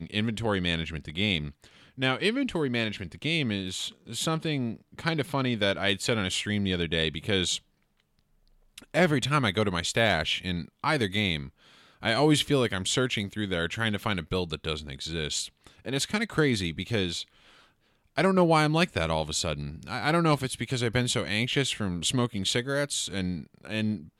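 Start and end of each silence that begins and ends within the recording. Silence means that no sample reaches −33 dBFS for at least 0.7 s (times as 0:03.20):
0:07.57–0:08.78
0:17.23–0:18.18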